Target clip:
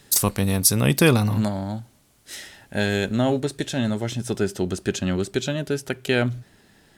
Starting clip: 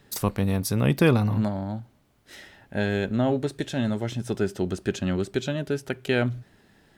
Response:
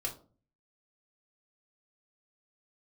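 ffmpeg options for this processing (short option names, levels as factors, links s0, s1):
-af "asetnsamples=n=441:p=0,asendcmd='3.4 equalizer g 7',equalizer=f=9300:w=0.4:g=14,volume=1.26"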